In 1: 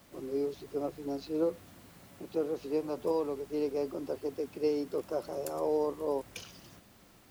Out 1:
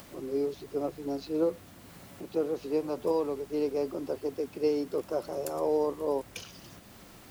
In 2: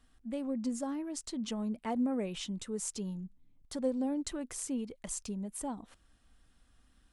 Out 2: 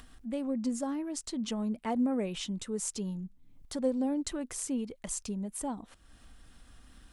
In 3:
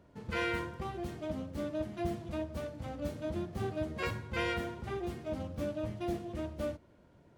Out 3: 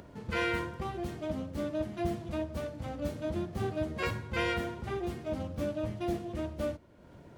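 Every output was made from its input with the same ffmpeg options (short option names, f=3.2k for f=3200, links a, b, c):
-af "acompressor=mode=upward:threshold=-46dB:ratio=2.5,volume=2.5dB"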